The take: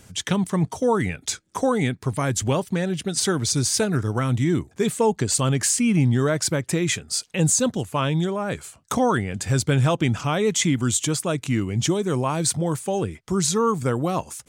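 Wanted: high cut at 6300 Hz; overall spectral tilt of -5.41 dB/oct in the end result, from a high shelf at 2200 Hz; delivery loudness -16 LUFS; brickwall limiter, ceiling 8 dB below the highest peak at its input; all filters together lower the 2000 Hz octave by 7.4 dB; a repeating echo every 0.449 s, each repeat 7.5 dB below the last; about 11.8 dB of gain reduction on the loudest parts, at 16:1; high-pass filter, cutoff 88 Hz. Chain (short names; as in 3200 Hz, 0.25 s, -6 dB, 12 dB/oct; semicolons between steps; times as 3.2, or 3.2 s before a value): HPF 88 Hz; LPF 6300 Hz; bell 2000 Hz -6 dB; high shelf 2200 Hz -7 dB; compressor 16:1, threshold -28 dBFS; limiter -24.5 dBFS; feedback echo 0.449 s, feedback 42%, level -7.5 dB; gain +18 dB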